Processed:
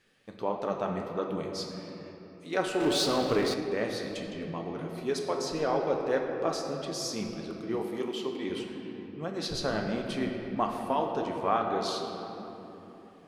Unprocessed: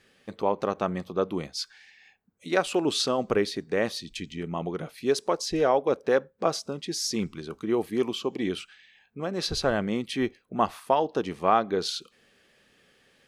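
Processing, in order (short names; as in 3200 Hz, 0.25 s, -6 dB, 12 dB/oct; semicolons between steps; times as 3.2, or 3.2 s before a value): shoebox room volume 210 m³, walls hard, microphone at 0.4 m; flange 1.6 Hz, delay 2.5 ms, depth 9.2 ms, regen +71%; 2.8–3.54 power-law curve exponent 0.7; 7.82–8.5 HPF 250 Hz 6 dB/oct; gain -2 dB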